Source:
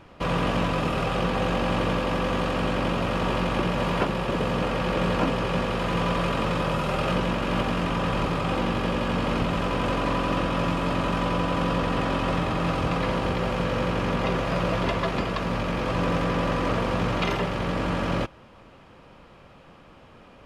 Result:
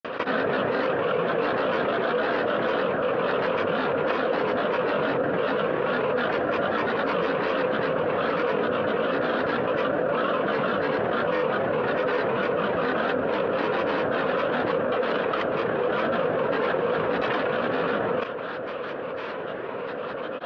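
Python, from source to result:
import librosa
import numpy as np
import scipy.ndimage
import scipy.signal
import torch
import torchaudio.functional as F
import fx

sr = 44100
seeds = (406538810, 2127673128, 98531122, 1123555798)

y = fx.granulator(x, sr, seeds[0], grain_ms=100.0, per_s=20.0, spray_ms=100.0, spread_st=12)
y = fx.cabinet(y, sr, low_hz=300.0, low_slope=12, high_hz=3000.0, hz=(340.0, 500.0, 830.0, 1400.0, 2100.0), db=(-6, 9, -8, 3, -9))
y = fx.env_flatten(y, sr, amount_pct=70)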